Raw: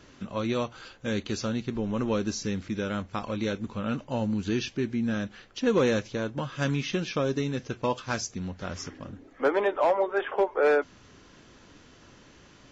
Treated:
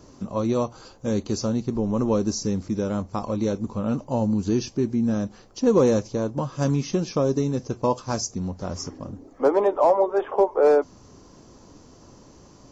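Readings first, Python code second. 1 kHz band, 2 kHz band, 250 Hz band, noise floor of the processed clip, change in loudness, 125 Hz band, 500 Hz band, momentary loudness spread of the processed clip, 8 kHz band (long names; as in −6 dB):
+4.5 dB, −7.5 dB, +5.5 dB, −50 dBFS, +5.0 dB, +5.5 dB, +5.5 dB, 12 LU, can't be measured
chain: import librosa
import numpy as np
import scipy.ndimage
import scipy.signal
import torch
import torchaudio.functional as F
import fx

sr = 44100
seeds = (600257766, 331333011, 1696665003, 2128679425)

y = fx.band_shelf(x, sr, hz=2300.0, db=-13.5, octaves=1.7)
y = y * 10.0 ** (5.5 / 20.0)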